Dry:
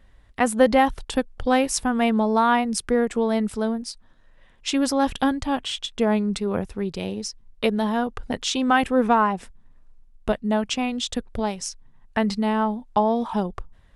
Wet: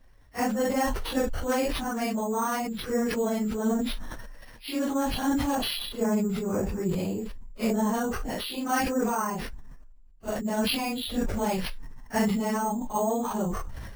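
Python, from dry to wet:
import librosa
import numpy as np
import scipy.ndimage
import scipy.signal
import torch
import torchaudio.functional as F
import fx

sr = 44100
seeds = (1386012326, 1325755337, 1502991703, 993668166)

y = fx.phase_scramble(x, sr, seeds[0], window_ms=100)
y = fx.high_shelf(y, sr, hz=2700.0, db=-11.5, at=(5.55, 7.94))
y = fx.rider(y, sr, range_db=5, speed_s=0.5)
y = np.repeat(scipy.signal.resample_poly(y, 1, 6), 6)[:len(y)]
y = fx.sustainer(y, sr, db_per_s=29.0)
y = y * librosa.db_to_amplitude(-6.5)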